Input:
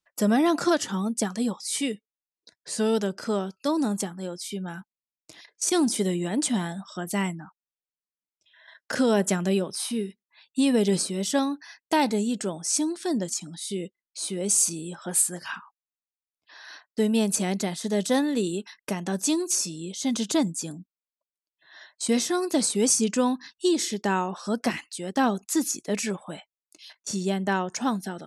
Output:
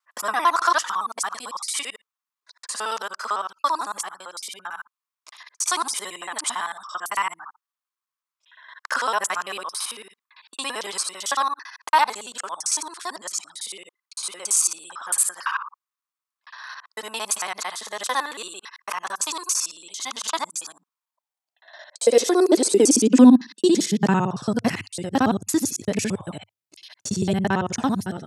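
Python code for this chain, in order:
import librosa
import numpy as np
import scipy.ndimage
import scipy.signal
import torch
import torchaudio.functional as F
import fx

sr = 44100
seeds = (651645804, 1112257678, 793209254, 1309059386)

y = fx.local_reverse(x, sr, ms=56.0)
y = fx.filter_sweep_highpass(y, sr, from_hz=1100.0, to_hz=100.0, start_s=20.85, end_s=24.75, q=4.8)
y = F.gain(torch.from_numpy(y), 2.5).numpy()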